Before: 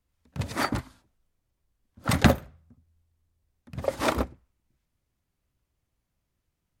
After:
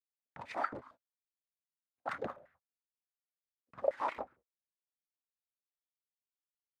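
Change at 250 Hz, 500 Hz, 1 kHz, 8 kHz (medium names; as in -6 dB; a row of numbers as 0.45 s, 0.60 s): -23.5 dB, -8.0 dB, -7.5 dB, under -25 dB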